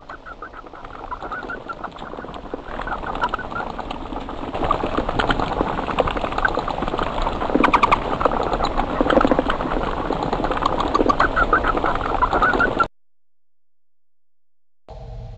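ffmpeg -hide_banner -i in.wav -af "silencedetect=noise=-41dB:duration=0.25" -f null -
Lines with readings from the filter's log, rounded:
silence_start: 12.86
silence_end: 14.89 | silence_duration: 2.02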